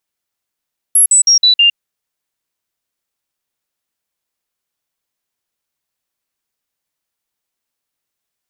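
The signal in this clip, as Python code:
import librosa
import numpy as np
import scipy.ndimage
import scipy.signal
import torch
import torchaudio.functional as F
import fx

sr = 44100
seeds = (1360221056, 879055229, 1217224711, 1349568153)

y = fx.stepped_sweep(sr, from_hz=11200.0, direction='down', per_octave=2, tones=5, dwell_s=0.11, gap_s=0.05, level_db=-5.5)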